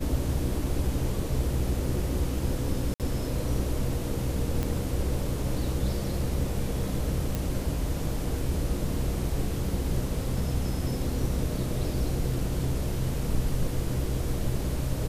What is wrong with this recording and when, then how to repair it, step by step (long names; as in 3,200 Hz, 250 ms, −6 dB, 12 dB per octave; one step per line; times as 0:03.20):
0:02.94–0:03.00: drop-out 58 ms
0:04.63: click −16 dBFS
0:07.35: click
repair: click removal
repair the gap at 0:02.94, 58 ms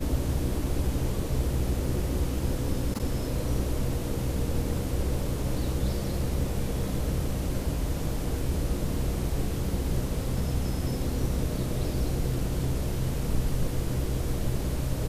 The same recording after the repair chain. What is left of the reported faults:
none of them is left